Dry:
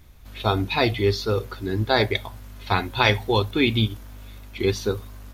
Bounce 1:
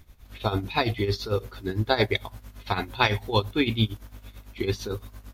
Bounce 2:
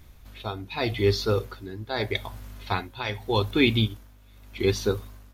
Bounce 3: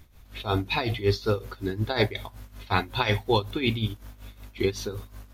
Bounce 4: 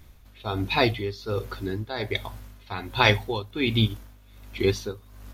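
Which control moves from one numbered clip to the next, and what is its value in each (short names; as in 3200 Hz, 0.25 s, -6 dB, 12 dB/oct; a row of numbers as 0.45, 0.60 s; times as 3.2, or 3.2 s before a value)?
tremolo, rate: 8.9, 0.83, 5.4, 1.3 Hz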